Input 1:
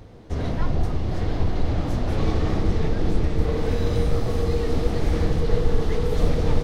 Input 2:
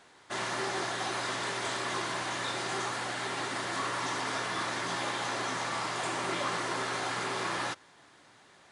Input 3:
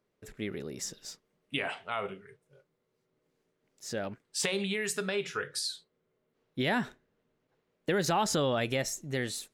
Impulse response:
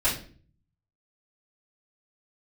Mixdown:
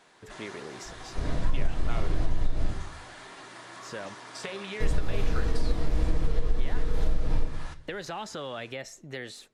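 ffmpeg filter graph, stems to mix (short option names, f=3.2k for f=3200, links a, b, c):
-filter_complex "[0:a]adelay=850,volume=-10.5dB,asplit=3[a][b][c];[a]atrim=end=2.7,asetpts=PTS-STARTPTS,afade=t=out:st=2.696:d=0.004:c=hsin[d];[b]atrim=start=2.7:end=4.8,asetpts=PTS-STARTPTS,volume=0[e];[c]atrim=start=4.8,asetpts=PTS-STARTPTS,afade=t=in:d=0.004:c=hsin[f];[d][e][f]concat=n=3:v=0:a=1,asplit=2[g][h];[h]volume=-11dB[i];[1:a]acompressor=threshold=-51dB:ratio=2,flanger=delay=3.8:depth=3.1:regen=-70:speed=1.5:shape=triangular,volume=2.5dB,asplit=2[j][k];[k]volume=-20dB[l];[2:a]aemphasis=mode=reproduction:type=50fm,acrossover=split=440|1100|2300[m][n][o][p];[m]acompressor=threshold=-48dB:ratio=4[q];[n]acompressor=threshold=-43dB:ratio=4[r];[o]acompressor=threshold=-47dB:ratio=4[s];[p]acompressor=threshold=-46dB:ratio=4[t];[q][r][s][t]amix=inputs=4:normalize=0,volume=2.5dB[u];[3:a]atrim=start_sample=2205[v];[i][l]amix=inputs=2:normalize=0[w];[w][v]afir=irnorm=-1:irlink=0[x];[g][j][u][x]amix=inputs=4:normalize=0,acompressor=threshold=-17dB:ratio=12"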